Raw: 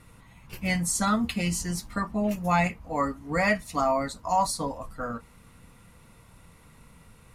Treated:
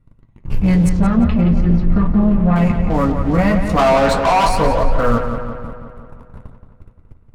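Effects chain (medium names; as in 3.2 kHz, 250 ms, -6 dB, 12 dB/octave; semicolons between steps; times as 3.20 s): 3.71–6.47 s: time-frequency box 360–1800 Hz +9 dB; gate -48 dBFS, range -13 dB; tilt EQ -4 dB/octave; waveshaping leveller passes 3; peak limiter -12 dBFS, peak gain reduction 9 dB; 3.79–4.49 s: overdrive pedal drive 20 dB, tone 5.9 kHz, clips at -12 dBFS; flange 0.4 Hz, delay 7.2 ms, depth 5.2 ms, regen -47%; 0.89–2.56 s: distance through air 300 m; filtered feedback delay 174 ms, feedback 61%, low-pass 4.9 kHz, level -7.5 dB; trim +6 dB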